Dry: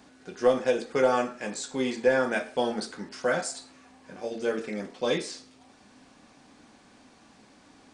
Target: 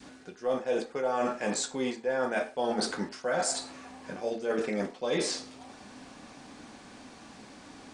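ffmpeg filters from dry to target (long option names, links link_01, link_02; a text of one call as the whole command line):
ffmpeg -i in.wav -af "adynamicequalizer=threshold=0.0158:dfrequency=730:dqfactor=0.9:tfrequency=730:tqfactor=0.9:attack=5:release=100:ratio=0.375:range=3:mode=boostabove:tftype=bell,areverse,acompressor=threshold=-33dB:ratio=10,areverse,volume=6.5dB" out.wav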